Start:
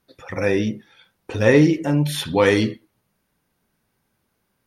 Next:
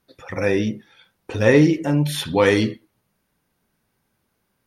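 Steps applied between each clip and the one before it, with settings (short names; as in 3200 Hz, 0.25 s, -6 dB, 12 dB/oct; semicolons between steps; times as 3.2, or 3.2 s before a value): nothing audible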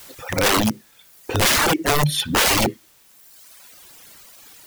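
requantised 8-bit, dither triangular; wrapped overs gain 16 dB; reverb removal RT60 1.4 s; gain +5.5 dB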